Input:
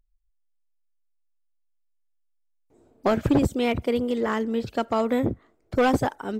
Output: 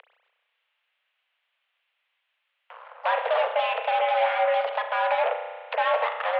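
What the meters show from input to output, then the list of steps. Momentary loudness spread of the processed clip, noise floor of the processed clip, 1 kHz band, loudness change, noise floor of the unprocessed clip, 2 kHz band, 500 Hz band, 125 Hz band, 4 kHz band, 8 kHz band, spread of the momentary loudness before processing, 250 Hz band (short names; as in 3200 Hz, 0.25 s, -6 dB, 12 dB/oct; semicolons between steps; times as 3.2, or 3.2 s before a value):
5 LU, -77 dBFS, +6.0 dB, -0.5 dB, -70 dBFS, +5.0 dB, 0.0 dB, under -40 dB, +3.0 dB, under -30 dB, 7 LU, under -40 dB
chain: bell 2400 Hz +5.5 dB 1.5 oct; in parallel at +2 dB: compressor, threshold -31 dBFS, peak gain reduction 14.5 dB; on the sum: limiter -16.5 dBFS, peak gain reduction 9 dB; upward compressor, threshold -32 dBFS; added harmonics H 7 -18 dB, 8 -14 dB, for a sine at -16.5 dBFS; mistuned SSB +330 Hz 160–2900 Hz; spring tank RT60 1.3 s, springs 32 ms, chirp 30 ms, DRR 5 dB; mismatched tape noise reduction encoder only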